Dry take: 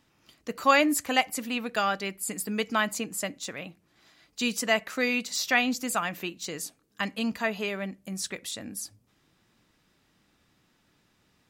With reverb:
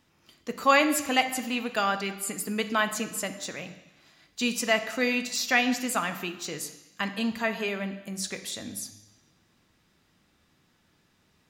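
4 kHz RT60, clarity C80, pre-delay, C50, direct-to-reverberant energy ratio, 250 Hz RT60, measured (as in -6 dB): 1.1 s, 13.0 dB, 3 ms, 11.0 dB, 8.0 dB, 0.95 s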